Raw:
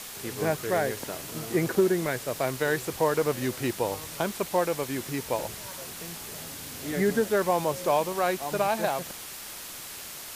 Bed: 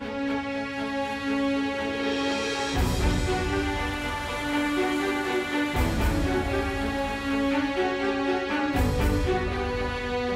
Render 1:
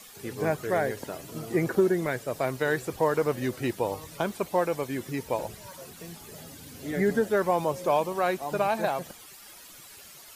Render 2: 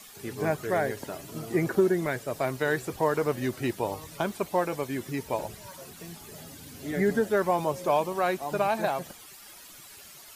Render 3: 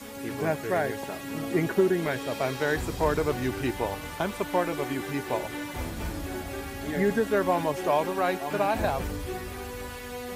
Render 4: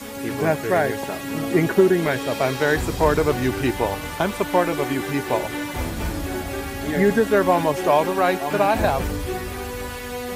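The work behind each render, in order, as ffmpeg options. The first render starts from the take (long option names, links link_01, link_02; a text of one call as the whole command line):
ffmpeg -i in.wav -af "afftdn=noise_reduction=12:noise_floor=-41" out.wav
ffmpeg -i in.wav -af "bandreject=frequency=500:width=12" out.wav
ffmpeg -i in.wav -i bed.wav -filter_complex "[1:a]volume=-9.5dB[link_01];[0:a][link_01]amix=inputs=2:normalize=0" out.wav
ffmpeg -i in.wav -af "volume=7dB" out.wav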